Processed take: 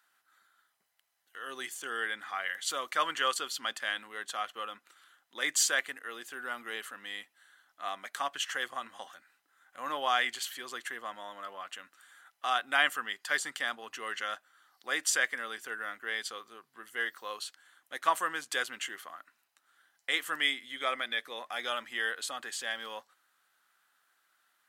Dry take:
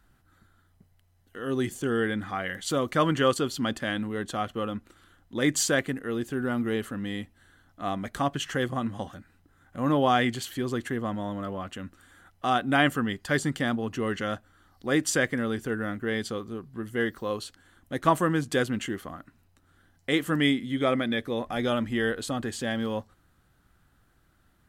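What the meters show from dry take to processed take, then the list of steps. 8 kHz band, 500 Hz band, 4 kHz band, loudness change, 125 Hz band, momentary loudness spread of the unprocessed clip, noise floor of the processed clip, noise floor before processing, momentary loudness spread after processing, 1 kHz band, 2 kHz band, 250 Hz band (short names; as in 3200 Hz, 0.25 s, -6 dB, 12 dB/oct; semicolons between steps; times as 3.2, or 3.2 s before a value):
0.0 dB, -13.5 dB, 0.0 dB, -5.0 dB, under -30 dB, 13 LU, -76 dBFS, -65 dBFS, 15 LU, -4.0 dB, -0.5 dB, -24.0 dB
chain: HPF 1100 Hz 12 dB/oct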